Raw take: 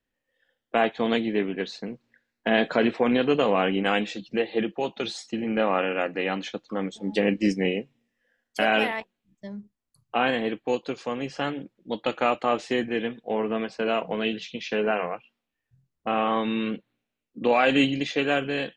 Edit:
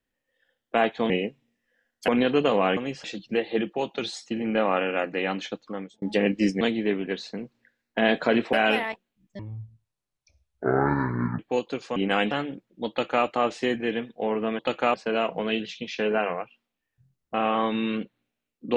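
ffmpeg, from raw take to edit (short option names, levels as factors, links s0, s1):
-filter_complex "[0:a]asplit=14[s0][s1][s2][s3][s4][s5][s6][s7][s8][s9][s10][s11][s12][s13];[s0]atrim=end=1.102[s14];[s1]atrim=start=7.628:end=8.612[s15];[s2]atrim=start=3.018:end=3.712[s16];[s3]atrim=start=11.118:end=11.392[s17];[s4]atrim=start=4.058:end=7.04,asetpts=PTS-STARTPTS,afade=t=out:st=2.532:d=0.45[s18];[s5]atrim=start=7.04:end=7.632,asetpts=PTS-STARTPTS,afade=t=in:d=0.004:c=hsin[s19];[s6]atrim=start=1.098:end=3.022[s20];[s7]atrim=start=8.608:end=9.474[s21];[s8]atrim=start=9.47:end=10.55,asetpts=PTS-STARTPTS,asetrate=23814,aresample=44100[s22];[s9]atrim=start=10.546:end=11.122[s23];[s10]atrim=start=3.708:end=4.062[s24];[s11]atrim=start=11.388:end=13.672[s25];[s12]atrim=start=11.978:end=12.332[s26];[s13]atrim=start=13.668[s27];[s14][s15]acrossfade=d=0.004:c1=hsin:c2=hsin[s28];[s28][s16]acrossfade=d=0.004:c1=hsin:c2=hsin[s29];[s29][s17]acrossfade=d=0.004:c1=hsin:c2=hsin[s30];[s18][s19]concat=n=2:v=0:a=1[s31];[s30][s31]acrossfade=d=0.004:c1=hsin:c2=hsin[s32];[s32][s20]acrossfade=d=0.004:c1=hsin:c2=hsin[s33];[s33][s21]acrossfade=d=0.004:c1=hsin:c2=hsin[s34];[s34][s22]acrossfade=d=0.004:c1=hsin:c2=hsin[s35];[s35][s23]acrossfade=d=0.004:c1=hsin:c2=hsin[s36];[s36][s24]acrossfade=d=0.004:c1=hsin:c2=hsin[s37];[s37][s25]acrossfade=d=0.004:c1=hsin:c2=hsin[s38];[s38][s26]acrossfade=d=0.004:c1=hsin:c2=hsin[s39];[s39][s27]acrossfade=d=0.004:c1=hsin:c2=hsin"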